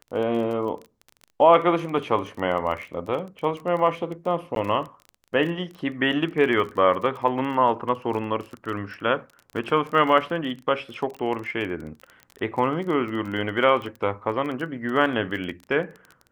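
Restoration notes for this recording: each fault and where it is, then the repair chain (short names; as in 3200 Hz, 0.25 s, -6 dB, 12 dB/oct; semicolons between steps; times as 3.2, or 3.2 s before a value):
crackle 25/s -31 dBFS
4.55–4.56 gap 12 ms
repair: de-click; interpolate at 4.55, 12 ms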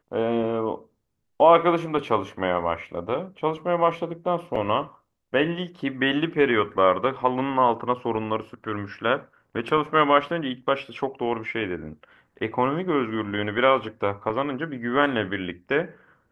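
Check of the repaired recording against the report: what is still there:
none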